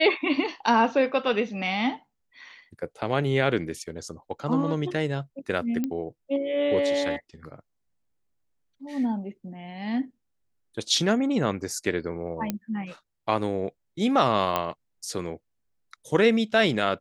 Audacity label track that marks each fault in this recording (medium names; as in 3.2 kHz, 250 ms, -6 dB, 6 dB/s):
5.840000	5.840000	pop -16 dBFS
12.500000	12.500000	pop -13 dBFS
14.560000	14.560000	pop -11 dBFS